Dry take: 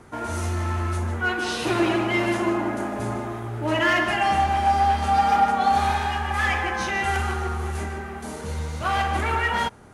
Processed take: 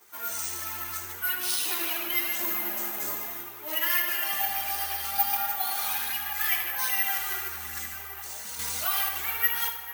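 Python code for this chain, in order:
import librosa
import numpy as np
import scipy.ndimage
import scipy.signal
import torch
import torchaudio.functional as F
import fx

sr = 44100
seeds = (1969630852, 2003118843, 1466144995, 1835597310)

p1 = np.diff(x, prepend=0.0)
p2 = p1 + fx.echo_wet_lowpass(p1, sr, ms=219, feedback_pct=75, hz=3100.0, wet_db=-14.0, dry=0)
p3 = fx.chorus_voices(p2, sr, voices=6, hz=0.3, base_ms=12, depth_ms=2.8, mix_pct=65)
p4 = (np.kron(scipy.signal.resample_poly(p3, 1, 3), np.eye(3)[0]) * 3)[:len(p3)]
p5 = fx.bass_treble(p4, sr, bass_db=5, treble_db=4, at=(2.39, 3.43))
p6 = fx.rider(p5, sr, range_db=3, speed_s=0.5)
p7 = p5 + (p6 * 10.0 ** (2.0 / 20.0))
p8 = fx.echo_feedback(p7, sr, ms=78, feedback_pct=48, wet_db=-9.5)
y = fx.env_flatten(p8, sr, amount_pct=50, at=(8.59, 9.09))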